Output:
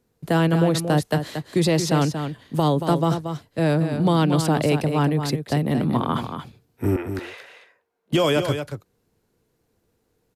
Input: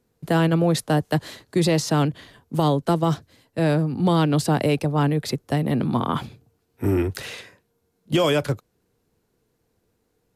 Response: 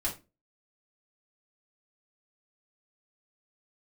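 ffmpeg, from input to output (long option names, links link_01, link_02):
-filter_complex "[0:a]asettb=1/sr,asplit=3[link_01][link_02][link_03];[link_01]atrim=end=6.964[link_04];[link_02]atrim=start=6.96:end=8.13,asetpts=PTS-STARTPTS,afade=type=in:duration=0.004:curve=qsin,afade=type=out:start_time=1.166:duration=0.004:curve=qsin,acrossover=split=420 2700:gain=0.0794 1 0.224[link_05][link_06][link_07];[link_05][link_06][link_07]amix=inputs=3:normalize=0[link_08];[link_03]atrim=start=8.126[link_09];[link_04][link_08]acrossfade=duration=0.004:curve1=hsin:curve2=qsin[link_10];[link_10][link_09]acrossfade=duration=0.004:curve1=qsin:curve2=hsin,aecho=1:1:230:0.398"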